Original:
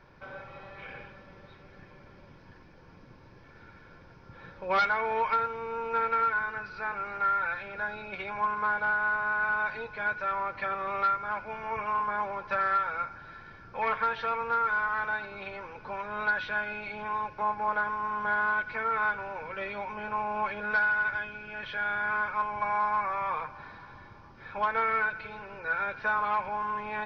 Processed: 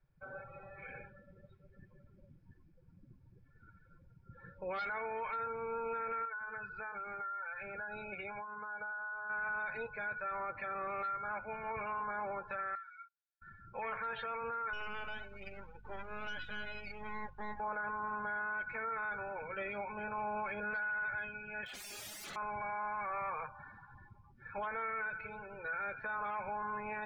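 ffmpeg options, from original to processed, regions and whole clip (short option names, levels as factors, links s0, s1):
-filter_complex "[0:a]asettb=1/sr,asplit=3[s0][s1][s2];[s0]atrim=end=6.254[s3];[s1]atrim=start=6.25:end=9.3,asetpts=PTS-STARTPTS,afade=t=in:d=0.004:c=qsin,afade=t=out:st=3.046:d=0.004:c=qsin,lowpass=4800,acompressor=threshold=0.0178:ratio=12:attack=3.2:release=140:knee=1:detection=peak[s4];[s2]atrim=start=9.296[s5];[s3][s4]acrossfade=d=0.004:c1=hsin:c2=qsin[s6];[s6][s5]acrossfade=d=0.004:c1=qsin:c2=hsin,asettb=1/sr,asplit=3[s7][s8][s9];[s7]atrim=end=12.754[s10];[s8]atrim=start=12.75:end=13.42,asetpts=PTS-STARTPTS,afade=t=in:d=0.004:c=qsin,afade=t=out:st=0.666:d=0.004:c=qsin,agate=range=0.158:threshold=0.0112:ratio=16:release=100:detection=peak,highpass=1200,aderivative[s11];[s9]atrim=start=13.416[s12];[s10][s11]acrossfade=d=0.004:c1=hsin:c2=qsin[s13];[s13][s12]acrossfade=d=0.004:c1=qsin:c2=hsin,asettb=1/sr,asplit=3[s14][s15][s16];[s14]atrim=end=14.734[s17];[s15]atrim=start=14.73:end=17.6,asetpts=PTS-STARTPTS,afade=t=in:d=0.004:c=qsin,afade=t=out:st=2.866:d=0.004:c=qsin,aeval=exprs='max(val(0),0)':c=same,aeval=exprs='val(0)+0.00224*(sin(2*PI*50*n/s)+sin(2*PI*2*50*n/s)/2+sin(2*PI*3*50*n/s)/3+sin(2*PI*4*50*n/s)/4+sin(2*PI*5*50*n/s)/5)':c=same[s18];[s16]atrim=start=17.596[s19];[s17][s18]acrossfade=d=0.004:c1=hsin:c2=qsin[s20];[s20][s19]acrossfade=d=0.004:c1=qsin:c2=hsin,asettb=1/sr,asplit=3[s21][s22][s23];[s21]atrim=end=21.654[s24];[s22]atrim=start=21.65:end=22.36,asetpts=PTS-STARTPTS,afade=t=in:d=0.004:c=qsin,afade=t=out:st=0.706:d=0.004:c=qsin,highpass=180,aeval=exprs='(mod(53.1*val(0)+1,2)-1)/53.1':c=same[s25];[s23]atrim=start=22.356[s26];[s24][s25]acrossfade=d=0.004:c1=hsin:c2=qsin[s27];[s27][s26]acrossfade=d=0.004:c1=qsin:c2=hsin,afftdn=nr=24:nf=-43,equalizer=f=1000:t=o:w=0.21:g=-7.5,alimiter=level_in=1.78:limit=0.0631:level=0:latency=1:release=17,volume=0.562,volume=0.708"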